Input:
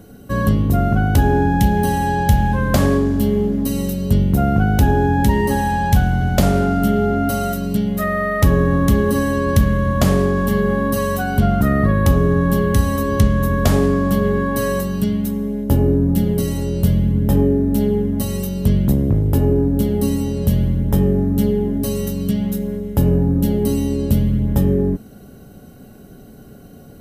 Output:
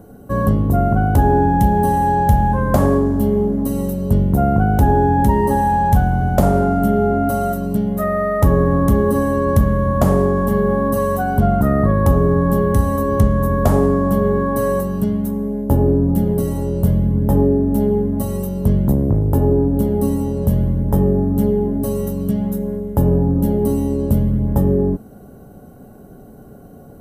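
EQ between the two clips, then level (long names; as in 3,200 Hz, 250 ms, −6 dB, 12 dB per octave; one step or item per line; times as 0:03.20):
drawn EQ curve 250 Hz 0 dB, 920 Hz +5 dB, 2,500 Hz −11 dB, 4,500 Hz −12 dB, 9,800 Hz −3 dB
0.0 dB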